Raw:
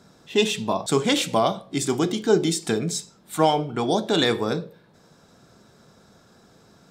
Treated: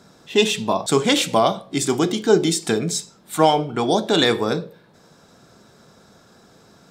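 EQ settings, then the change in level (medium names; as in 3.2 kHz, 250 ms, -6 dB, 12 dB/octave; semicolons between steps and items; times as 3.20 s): bass shelf 190 Hz -3.5 dB; +4.0 dB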